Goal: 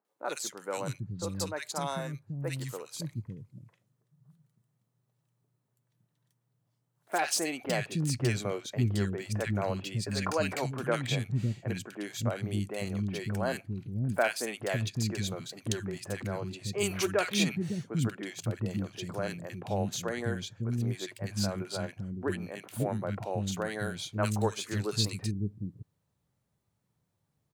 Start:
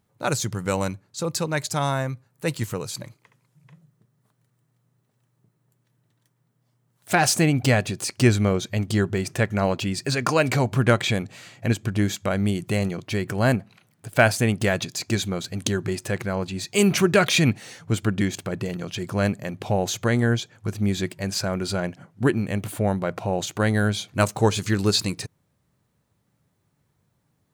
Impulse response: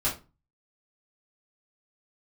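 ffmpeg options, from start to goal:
-filter_complex "[0:a]acrossover=split=290|1700[link_01][link_02][link_03];[link_03]adelay=50[link_04];[link_01]adelay=560[link_05];[link_05][link_02][link_04]amix=inputs=3:normalize=0,volume=-8dB"

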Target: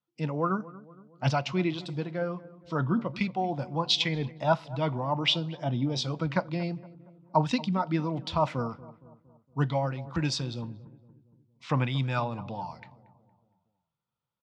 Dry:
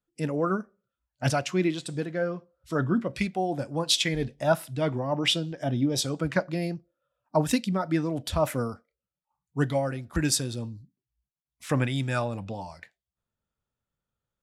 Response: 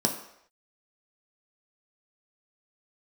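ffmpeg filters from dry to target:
-filter_complex "[0:a]highpass=120,equalizer=frequency=140:width_type=q:width=4:gain=3,equalizer=frequency=280:width_type=q:width=4:gain=-5,equalizer=frequency=410:width_type=q:width=4:gain=-6,equalizer=frequency=590:width_type=q:width=4:gain=-4,equalizer=frequency=960:width_type=q:width=4:gain=7,equalizer=frequency=1700:width_type=q:width=4:gain=-8,lowpass=frequency=4900:width=0.5412,lowpass=frequency=4900:width=1.3066,asplit=2[link_01][link_02];[link_02]adelay=232,lowpass=frequency=1100:poles=1,volume=-17.5dB,asplit=2[link_03][link_04];[link_04]adelay=232,lowpass=frequency=1100:poles=1,volume=0.55,asplit=2[link_05][link_06];[link_06]adelay=232,lowpass=frequency=1100:poles=1,volume=0.55,asplit=2[link_07][link_08];[link_08]adelay=232,lowpass=frequency=1100:poles=1,volume=0.55,asplit=2[link_09][link_10];[link_10]adelay=232,lowpass=frequency=1100:poles=1,volume=0.55[link_11];[link_01][link_03][link_05][link_07][link_09][link_11]amix=inputs=6:normalize=0"

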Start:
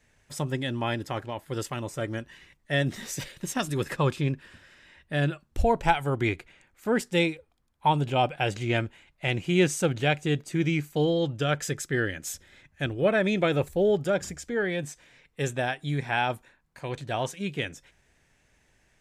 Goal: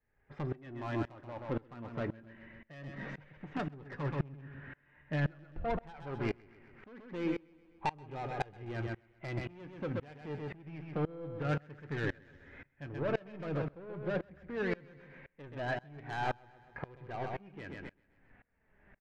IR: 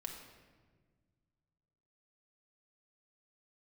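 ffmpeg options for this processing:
-filter_complex "[0:a]deesser=0.65,lowpass=frequency=2000:width=0.5412,lowpass=frequency=2000:width=1.3066,acompressor=threshold=-32dB:ratio=3,asoftclip=type=tanh:threshold=-33dB,flanger=delay=2.4:depth=4.7:regen=56:speed=0.12:shape=sinusoidal,aecho=1:1:129|258|387|516|645:0.422|0.173|0.0709|0.0291|0.0119,asplit=2[link_01][link_02];[1:a]atrim=start_sample=2205,adelay=26[link_03];[link_02][link_03]afir=irnorm=-1:irlink=0,volume=-17.5dB[link_04];[link_01][link_04]amix=inputs=2:normalize=0,aeval=exprs='val(0)*pow(10,-26*if(lt(mod(-1.9*n/s,1),2*abs(-1.9)/1000),1-mod(-1.9*n/s,1)/(2*abs(-1.9)/1000),(mod(-1.9*n/s,1)-2*abs(-1.9)/1000)/(1-2*abs(-1.9)/1000))/20)':channel_layout=same,volume=11.5dB"

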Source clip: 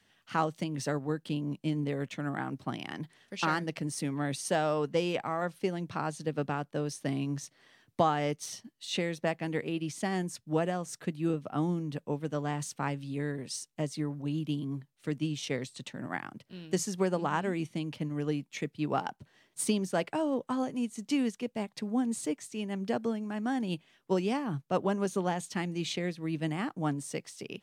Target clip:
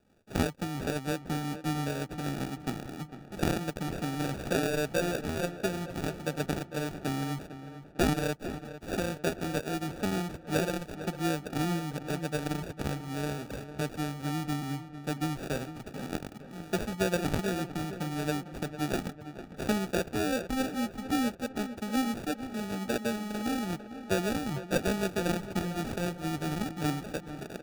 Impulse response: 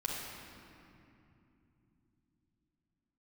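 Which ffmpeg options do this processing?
-filter_complex "[0:a]acrusher=samples=42:mix=1:aa=0.000001,asplit=2[link_01][link_02];[link_02]adelay=451,lowpass=frequency=2600:poles=1,volume=-12dB,asplit=2[link_03][link_04];[link_04]adelay=451,lowpass=frequency=2600:poles=1,volume=0.51,asplit=2[link_05][link_06];[link_06]adelay=451,lowpass=frequency=2600:poles=1,volume=0.51,asplit=2[link_07][link_08];[link_08]adelay=451,lowpass=frequency=2600:poles=1,volume=0.51,asplit=2[link_09][link_10];[link_10]adelay=451,lowpass=frequency=2600:poles=1,volume=0.51[link_11];[link_03][link_05][link_07][link_09][link_11]amix=inputs=5:normalize=0[link_12];[link_01][link_12]amix=inputs=2:normalize=0"

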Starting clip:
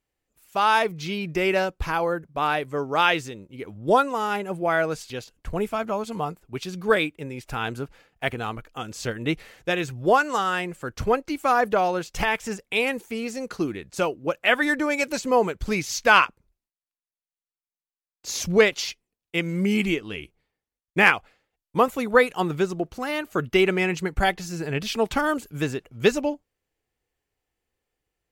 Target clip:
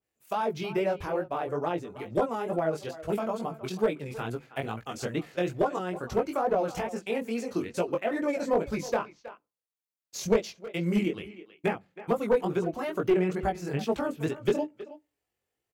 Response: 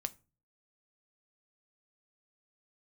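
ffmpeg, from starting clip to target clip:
-filter_complex "[0:a]highpass=78,equalizer=frequency=660:width_type=o:width=0.35:gain=2,bandreject=frequency=50:width_type=h:width=6,bandreject=frequency=100:width_type=h:width=6,bandreject=frequency=150:width_type=h:width=6,bandreject=frequency=200:width_type=h:width=6,bandreject=frequency=250:width_type=h:width=6,bandreject=frequency=300:width_type=h:width=6,acrossover=split=700[link_01][link_02];[link_02]acompressor=threshold=-31dB:ratio=20[link_03];[link_01][link_03]amix=inputs=2:normalize=0,atempo=1.8,flanger=delay=17:depth=5.4:speed=2.3,asplit=2[link_04][link_05];[link_05]adelay=320,highpass=300,lowpass=3400,asoftclip=type=hard:threshold=-19.5dB,volume=-15dB[link_06];[link_04][link_06]amix=inputs=2:normalize=0,asplit=2[link_07][link_08];[1:a]atrim=start_sample=2205,highshelf=frequency=6600:gain=10.5[link_09];[link_08][link_09]afir=irnorm=-1:irlink=0,volume=-9.5dB[link_10];[link_07][link_10]amix=inputs=2:normalize=0,aeval=exprs='clip(val(0),-1,0.141)':channel_layout=same,adynamicequalizer=threshold=0.00891:dfrequency=1700:dqfactor=0.7:tfrequency=1700:tqfactor=0.7:attack=5:release=100:ratio=0.375:range=3:mode=cutabove:tftype=highshelf,volume=-1.5dB"

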